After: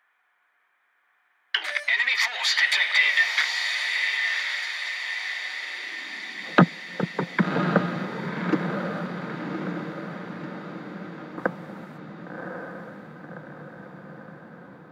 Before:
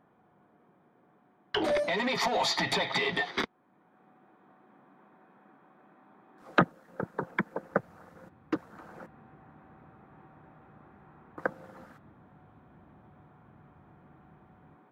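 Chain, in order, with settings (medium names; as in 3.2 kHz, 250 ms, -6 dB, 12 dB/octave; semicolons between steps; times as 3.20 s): high-pass sweep 1.9 kHz -> 170 Hz, 4.50–6.50 s; echo that smears into a reverb 1099 ms, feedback 56%, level -4 dB; trim +4.5 dB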